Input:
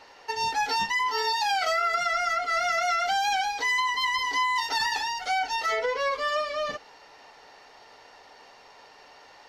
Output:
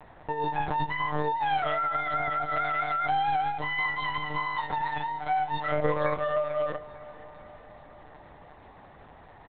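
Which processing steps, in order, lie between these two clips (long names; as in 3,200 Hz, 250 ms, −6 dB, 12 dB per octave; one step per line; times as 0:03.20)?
spectral tilt −3.5 dB per octave
mains-hum notches 60/120/180/240 Hz
dynamic equaliser 2,500 Hz, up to −4 dB, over −42 dBFS, Q 0.82
notch filter 2,800 Hz, Q 8.5
one-pitch LPC vocoder at 8 kHz 150 Hz
repeating echo 448 ms, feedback 60%, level −19.5 dB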